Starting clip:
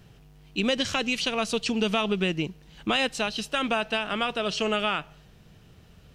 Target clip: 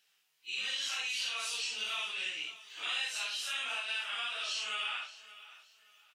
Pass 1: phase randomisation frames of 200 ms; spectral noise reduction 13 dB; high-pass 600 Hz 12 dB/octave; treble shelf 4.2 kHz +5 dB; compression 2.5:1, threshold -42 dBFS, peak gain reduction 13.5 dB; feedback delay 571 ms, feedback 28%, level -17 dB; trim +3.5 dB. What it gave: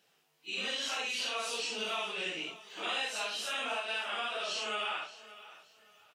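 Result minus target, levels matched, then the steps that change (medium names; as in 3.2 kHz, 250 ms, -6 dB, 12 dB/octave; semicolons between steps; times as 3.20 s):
500 Hz band +13.5 dB
change: high-pass 1.7 kHz 12 dB/octave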